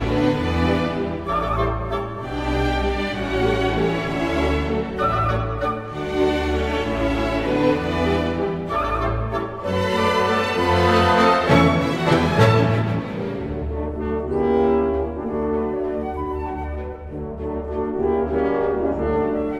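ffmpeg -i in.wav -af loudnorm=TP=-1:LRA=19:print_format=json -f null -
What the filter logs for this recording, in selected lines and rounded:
"input_i" : "-21.3",
"input_tp" : "-1.7",
"input_lra" : "5.2",
"input_thresh" : "-31.4",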